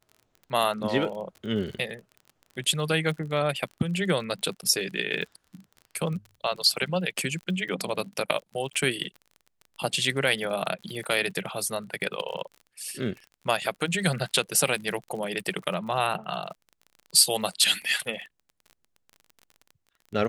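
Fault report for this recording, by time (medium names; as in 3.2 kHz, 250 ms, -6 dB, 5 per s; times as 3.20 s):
crackle 35 per s -37 dBFS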